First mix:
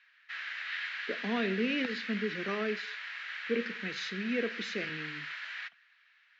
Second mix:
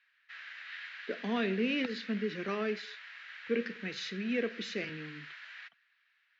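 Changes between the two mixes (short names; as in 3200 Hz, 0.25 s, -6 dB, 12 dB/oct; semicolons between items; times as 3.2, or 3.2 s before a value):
background -7.0 dB; reverb: off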